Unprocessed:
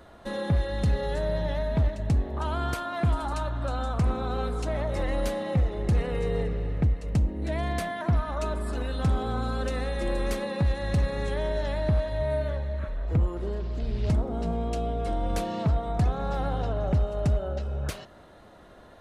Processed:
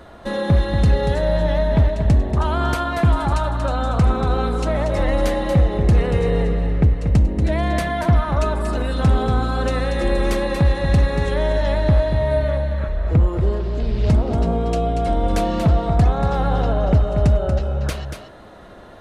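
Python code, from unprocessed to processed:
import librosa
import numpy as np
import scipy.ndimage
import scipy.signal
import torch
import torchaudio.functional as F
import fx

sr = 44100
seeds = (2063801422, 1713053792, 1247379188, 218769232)

y = fx.high_shelf(x, sr, hz=6400.0, db=-4.5)
y = y + 10.0 ** (-7.5 / 20.0) * np.pad(y, (int(235 * sr / 1000.0), 0))[:len(y)]
y = y * 10.0 ** (8.5 / 20.0)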